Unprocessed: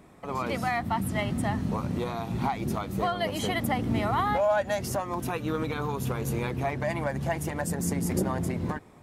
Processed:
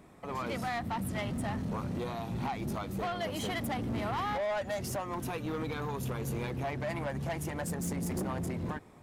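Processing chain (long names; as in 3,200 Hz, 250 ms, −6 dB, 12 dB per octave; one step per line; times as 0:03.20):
soft clipping −27 dBFS, distortion −11 dB
level −2.5 dB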